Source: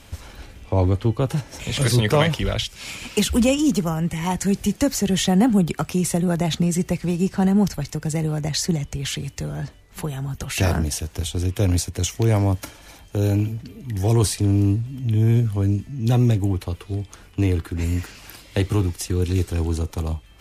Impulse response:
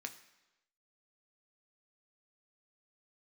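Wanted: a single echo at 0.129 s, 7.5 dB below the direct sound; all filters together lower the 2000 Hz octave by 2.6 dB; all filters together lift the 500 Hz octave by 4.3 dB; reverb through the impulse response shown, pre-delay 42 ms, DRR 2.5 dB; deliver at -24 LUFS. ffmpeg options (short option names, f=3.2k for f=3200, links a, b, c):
-filter_complex "[0:a]equalizer=f=500:t=o:g=5.5,equalizer=f=2k:t=o:g=-3.5,aecho=1:1:129:0.422,asplit=2[a][b];[1:a]atrim=start_sample=2205,adelay=42[c];[b][c]afir=irnorm=-1:irlink=0,volume=-0.5dB[d];[a][d]amix=inputs=2:normalize=0,volume=-4.5dB"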